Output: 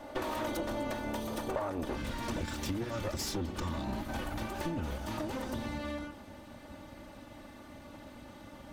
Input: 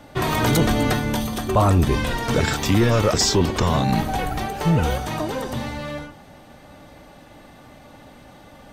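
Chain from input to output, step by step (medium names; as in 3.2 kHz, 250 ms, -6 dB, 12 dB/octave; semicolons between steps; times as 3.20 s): comb filter that takes the minimum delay 3.4 ms; peaking EQ 620 Hz +8 dB 2.1 oct, from 1.97 s 130 Hz; compression 6:1, threshold -28 dBFS, peak gain reduction 18 dB; trim -5.5 dB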